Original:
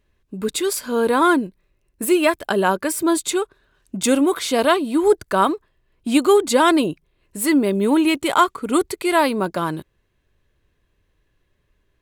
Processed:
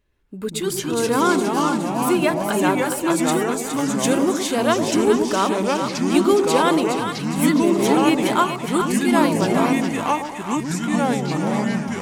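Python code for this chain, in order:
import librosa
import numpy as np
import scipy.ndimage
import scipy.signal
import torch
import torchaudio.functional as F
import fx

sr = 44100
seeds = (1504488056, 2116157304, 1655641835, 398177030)

p1 = fx.echo_pitch(x, sr, ms=121, semitones=-3, count=3, db_per_echo=-3.0)
p2 = p1 + fx.echo_split(p1, sr, split_hz=860.0, low_ms=114, high_ms=414, feedback_pct=52, wet_db=-6.5, dry=0)
y = F.gain(torch.from_numpy(p2), -3.5).numpy()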